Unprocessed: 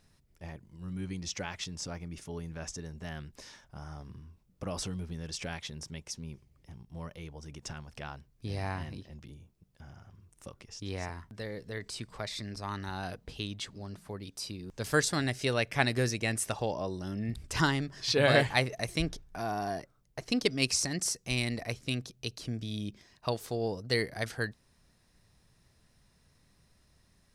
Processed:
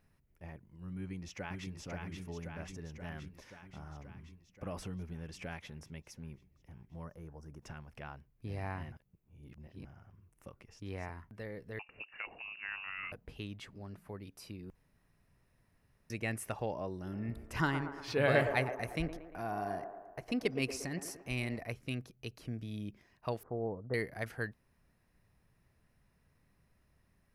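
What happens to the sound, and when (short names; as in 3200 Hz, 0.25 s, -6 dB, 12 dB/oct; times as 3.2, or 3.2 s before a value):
0.97–1.75 echo throw 0.53 s, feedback 70%, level -3.5 dB
7.04–7.62 band shelf 2900 Hz -14 dB 1.2 oct
8.92–9.85 reverse
11.79–13.12 inverted band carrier 2800 Hz
14.75–16.1 room tone
16.94–21.57 band-limited delay 0.116 s, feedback 57%, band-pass 670 Hz, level -6 dB
23.43–23.94 steep low-pass 1300 Hz
whole clip: band shelf 5500 Hz -10.5 dB; gain -4.5 dB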